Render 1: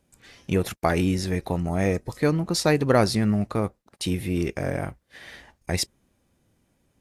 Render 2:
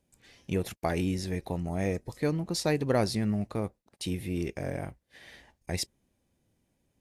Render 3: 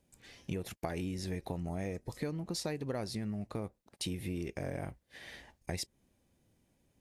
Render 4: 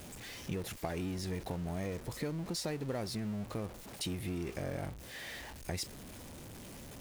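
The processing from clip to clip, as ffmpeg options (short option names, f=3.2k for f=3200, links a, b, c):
-af "equalizer=f=1.3k:t=o:w=0.6:g=-5.5,volume=-6.5dB"
-af "acompressor=threshold=-36dB:ratio=6,volume=1.5dB"
-af "aeval=exprs='val(0)+0.5*0.00891*sgn(val(0))':c=same,volume=-2dB"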